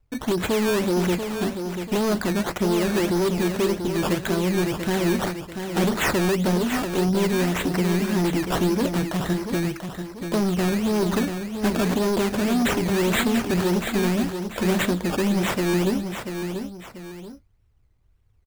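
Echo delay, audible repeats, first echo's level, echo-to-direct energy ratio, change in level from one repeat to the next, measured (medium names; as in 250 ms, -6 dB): 688 ms, 2, -7.5 dB, -7.0 dB, -8.0 dB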